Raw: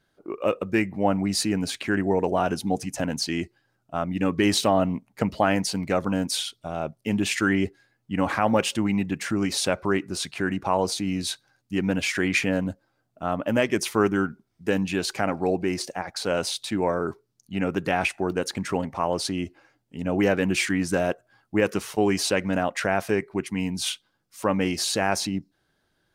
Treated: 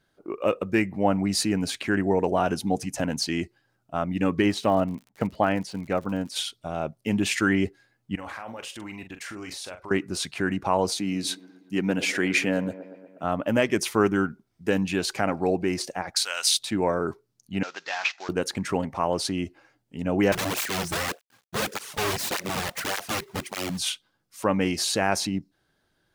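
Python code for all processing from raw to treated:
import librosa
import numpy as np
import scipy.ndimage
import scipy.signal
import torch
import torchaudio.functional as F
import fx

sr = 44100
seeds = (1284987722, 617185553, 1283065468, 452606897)

y = fx.high_shelf(x, sr, hz=4500.0, db=-9.0, at=(4.41, 6.35), fade=0.02)
y = fx.dmg_crackle(y, sr, seeds[0], per_s=79.0, level_db=-33.0, at=(4.41, 6.35), fade=0.02)
y = fx.upward_expand(y, sr, threshold_db=-31.0, expansion=1.5, at=(4.41, 6.35), fade=0.02)
y = fx.chain(y, sr, fx.peak_eq(hz=170.0, db=-12.5, octaves=2.0),
    fx.level_steps(step_db=19),
    fx.doubler(ms=43.0, db=-9.0), at=(8.15, 9.91))
y = fx.chain(y, sr, fx.highpass(hz=150.0, slope=12),
    fx.echo_wet_bandpass(ms=119, feedback_pct=63, hz=570.0, wet_db=-12), at=(10.99, 13.24))
y = fx.chain(y, sr, fx.highpass(hz=1400.0, slope=12),
    fx.high_shelf(hz=2500.0, db=10.0), at=(16.15, 16.59))
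y = fx.chain(y, sr, fx.cvsd(bps=32000),
    fx.highpass(hz=1100.0, slope=12),
    fx.high_shelf(hz=3900.0, db=6.0), at=(17.63, 18.29))
y = fx.chain(y, sr, fx.quant_companded(bits=4),
    fx.overflow_wrap(gain_db=19.0),
    fx.flanger_cancel(hz=1.7, depth_ms=4.4), at=(20.32, 23.79))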